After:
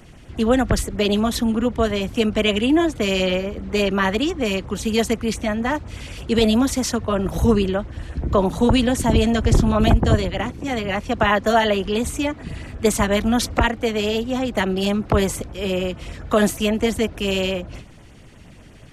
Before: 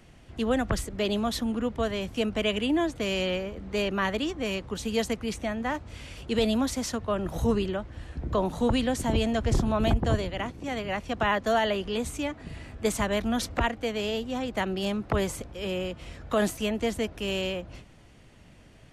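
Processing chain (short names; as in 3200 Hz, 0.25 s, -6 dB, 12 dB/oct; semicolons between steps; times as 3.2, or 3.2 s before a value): LFO notch sine 8.4 Hz 570–4900 Hz; gain +9 dB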